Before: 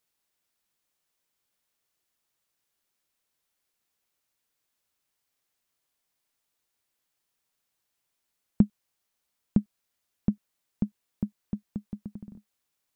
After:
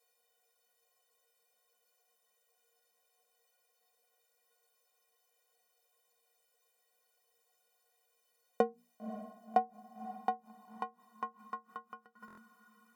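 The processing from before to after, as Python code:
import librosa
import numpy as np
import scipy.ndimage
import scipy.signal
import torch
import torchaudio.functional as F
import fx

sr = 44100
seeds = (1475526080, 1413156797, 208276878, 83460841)

p1 = fx.leveller(x, sr, passes=1)
p2 = fx.low_shelf(p1, sr, hz=170.0, db=7.0)
p3 = fx.hum_notches(p2, sr, base_hz=60, count=4)
p4 = p3 + fx.echo_diffused(p3, sr, ms=539, feedback_pct=48, wet_db=-16, dry=0)
p5 = fx.gate_flip(p4, sr, shuts_db=-21.0, range_db=-25)
p6 = fx.filter_sweep_highpass(p5, sr, from_hz=550.0, to_hz=1200.0, start_s=8.61, end_s=11.9, q=7.8)
p7 = fx.stiff_resonator(p6, sr, f0_hz=220.0, decay_s=0.24, stiffness=0.03)
p8 = fx.buffer_glitch(p7, sr, at_s=(12.26,), block=1024, repeats=4)
y = p8 * librosa.db_to_amplitude(17.0)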